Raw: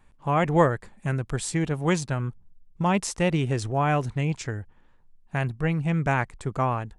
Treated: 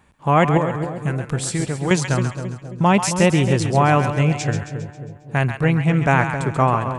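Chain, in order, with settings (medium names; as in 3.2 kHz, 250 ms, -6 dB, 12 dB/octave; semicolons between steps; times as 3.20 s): high-pass 70 Hz; 0.57–1.91 s: compression, threshold -28 dBFS, peak gain reduction 14 dB; two-band feedback delay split 680 Hz, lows 268 ms, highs 135 ms, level -8 dB; trim +7.5 dB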